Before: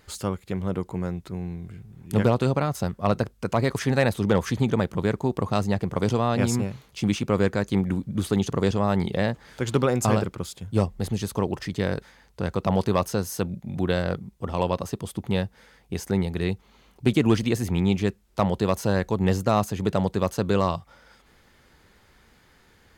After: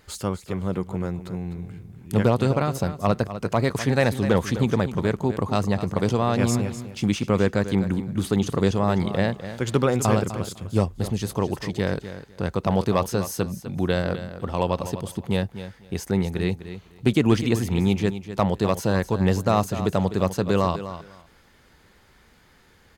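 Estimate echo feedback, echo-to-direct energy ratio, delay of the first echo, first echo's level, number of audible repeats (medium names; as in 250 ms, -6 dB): 18%, -12.0 dB, 252 ms, -12.0 dB, 2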